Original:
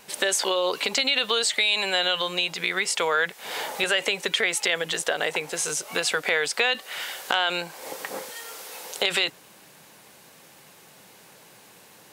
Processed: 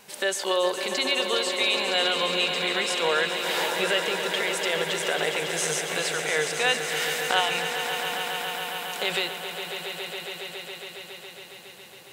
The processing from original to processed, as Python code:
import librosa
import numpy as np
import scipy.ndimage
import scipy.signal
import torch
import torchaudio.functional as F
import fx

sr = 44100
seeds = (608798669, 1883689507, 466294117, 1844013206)

y = fx.fixed_phaser(x, sr, hz=1600.0, stages=6, at=(7.4, 8.92))
y = fx.rider(y, sr, range_db=10, speed_s=0.5)
y = fx.hpss(y, sr, part='harmonic', gain_db=8)
y = fx.echo_swell(y, sr, ms=138, loudest=5, wet_db=-10.5)
y = F.gain(torch.from_numpy(y), -7.0).numpy()